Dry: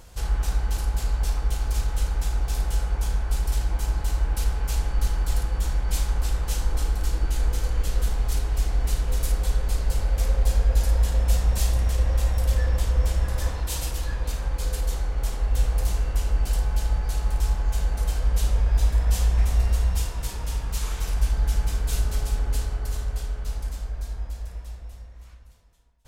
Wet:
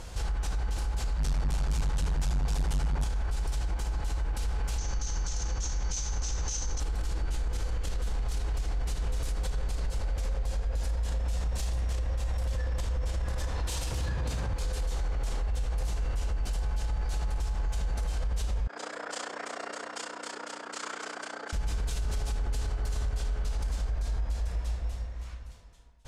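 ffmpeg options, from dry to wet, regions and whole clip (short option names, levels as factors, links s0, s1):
-filter_complex "[0:a]asettb=1/sr,asplit=3[s0][s1][s2];[s0]atrim=end=1.164[s3];[s1]atrim=start=1.16:end=3.04,asetpts=PTS-STARTPTS,afade=t=in:d=0.004:c=qsin,afade=t=out:st=1.876:d=0.004:c=qsin,asoftclip=type=hard:threshold=0.0531,asplit=2[s4][s5];[s5]adelay=21,volume=0.237[s6];[s4][s6]amix=inputs=2:normalize=0,atrim=end_sample=82908[s7];[s2]atrim=start=3.036[s8];[s3][s7]acrossfade=d=0.004:c1=hsin:c2=qsin[s9];[s9][s8]acrossfade=d=0.004:c1=qsin:c2=hsin,asettb=1/sr,asplit=3[s10][s11][s12];[s10]atrim=end=4.784[s13];[s11]atrim=start=4.78:end=6.8,asetpts=PTS-STARTPTS,afade=t=in:d=0.004:c=qsin,afade=t=out:st=2.016:d=0.004:c=qsin,lowpass=f=6200:t=q:w=11,bandreject=f=630:w=20[s14];[s12]atrim=start=6.796[s15];[s13][s14]acrossfade=d=0.004:c1=hsin:c2=qsin[s16];[s16][s15]acrossfade=d=0.004:c1=qsin:c2=hsin,asettb=1/sr,asplit=3[s17][s18][s19];[s17]atrim=end=13.914[s20];[s18]atrim=start=13.91:end=14.53,asetpts=PTS-STARTPTS,afade=t=in:d=0.004:c=qsin,afade=t=out:st=0.616:d=0.004:c=qsin,highpass=f=74:w=0.5412,highpass=f=74:w=1.3066,lowshelf=f=210:g=11[s21];[s19]atrim=start=14.526[s22];[s20][s21]acrossfade=d=0.004:c1=hsin:c2=qsin[s23];[s23][s22]acrossfade=d=0.004:c1=qsin:c2=hsin,asettb=1/sr,asplit=3[s24][s25][s26];[s24]atrim=end=18.674[s27];[s25]atrim=start=18.67:end=21.53,asetpts=PTS-STARTPTS,afade=t=in:d=0.004:c=qsin,afade=t=out:st=2.856:d=0.004:c=qsin,tremolo=f=30:d=0.857,aeval=exprs='val(0)+0.0224*(sin(2*PI*60*n/s)+sin(2*PI*2*60*n/s)/2+sin(2*PI*3*60*n/s)/3+sin(2*PI*4*60*n/s)/4+sin(2*PI*5*60*n/s)/5)':c=same,highpass=f=400:w=0.5412,highpass=f=400:w=1.3066,equalizer=f=860:t=q:w=4:g=-4,equalizer=f=1400:t=q:w=4:g=6,equalizer=f=2600:t=q:w=4:g=-6,equalizer=f=3800:t=q:w=4:g=-7,equalizer=f=5900:t=q:w=4:g=-8,lowpass=f=7800:w=0.5412,lowpass=f=7800:w=1.3066[s28];[s26]atrim=start=21.526[s29];[s27][s28]acrossfade=d=0.004:c1=hsin:c2=qsin[s30];[s30][s29]acrossfade=d=0.004:c1=qsin:c2=hsin,lowpass=8500,acompressor=threshold=0.0562:ratio=6,alimiter=level_in=2:limit=0.0631:level=0:latency=1:release=48,volume=0.501,volume=2"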